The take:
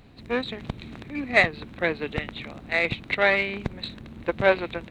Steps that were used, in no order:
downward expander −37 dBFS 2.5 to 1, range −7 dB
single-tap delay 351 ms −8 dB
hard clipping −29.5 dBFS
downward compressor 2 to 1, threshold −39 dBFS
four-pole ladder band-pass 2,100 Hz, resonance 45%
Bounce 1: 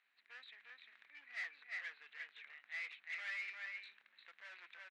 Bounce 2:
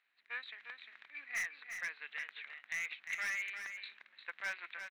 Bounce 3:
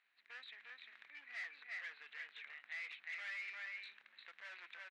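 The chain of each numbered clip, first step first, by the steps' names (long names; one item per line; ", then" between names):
single-tap delay, then hard clipping, then four-pole ladder band-pass, then downward expander, then downward compressor
downward expander, then four-pole ladder band-pass, then hard clipping, then downward compressor, then single-tap delay
single-tap delay, then downward expander, then hard clipping, then downward compressor, then four-pole ladder band-pass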